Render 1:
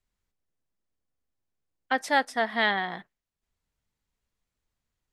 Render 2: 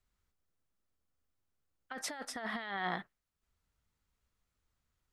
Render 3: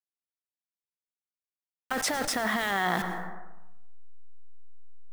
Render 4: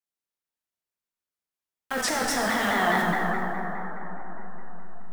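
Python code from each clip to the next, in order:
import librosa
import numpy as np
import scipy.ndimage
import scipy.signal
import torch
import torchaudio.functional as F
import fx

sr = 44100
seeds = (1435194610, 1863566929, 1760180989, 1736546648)

y1 = fx.peak_eq(x, sr, hz=67.0, db=5.0, octaves=1.2)
y1 = fx.over_compress(y1, sr, threshold_db=-33.0, ratio=-1.0)
y1 = fx.peak_eq(y1, sr, hz=1300.0, db=6.0, octaves=0.35)
y1 = F.gain(torch.from_numpy(y1), -7.0).numpy()
y2 = fx.delta_hold(y1, sr, step_db=-46.5)
y2 = fx.rev_plate(y2, sr, seeds[0], rt60_s=0.88, hf_ratio=0.5, predelay_ms=85, drr_db=17.5)
y2 = fx.env_flatten(y2, sr, amount_pct=70)
y2 = F.gain(torch.from_numpy(y2), 7.5).numpy()
y3 = fx.rev_plate(y2, sr, seeds[1], rt60_s=4.6, hf_ratio=0.35, predelay_ms=0, drr_db=-3.0)
y3 = fx.vibrato_shape(y3, sr, shape='saw_down', rate_hz=4.8, depth_cents=100.0)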